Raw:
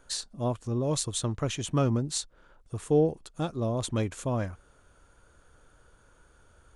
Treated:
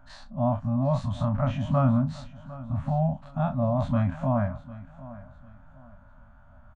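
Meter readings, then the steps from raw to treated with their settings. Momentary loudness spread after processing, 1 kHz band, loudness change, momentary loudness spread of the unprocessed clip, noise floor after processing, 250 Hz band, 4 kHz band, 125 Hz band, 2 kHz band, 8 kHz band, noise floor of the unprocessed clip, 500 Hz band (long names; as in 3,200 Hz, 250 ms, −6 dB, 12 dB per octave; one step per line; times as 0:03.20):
19 LU, +6.0 dB, +3.0 dB, 10 LU, −52 dBFS, +4.0 dB, below −10 dB, +5.5 dB, 0.0 dB, below −20 dB, −61 dBFS, −1.0 dB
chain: every bin's largest magnitude spread in time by 60 ms
low-pass filter 1,100 Hz 12 dB per octave
brick-wall band-stop 270–550 Hz
double-tracking delay 38 ms −13 dB
repeating echo 753 ms, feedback 30%, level −17.5 dB
level +4 dB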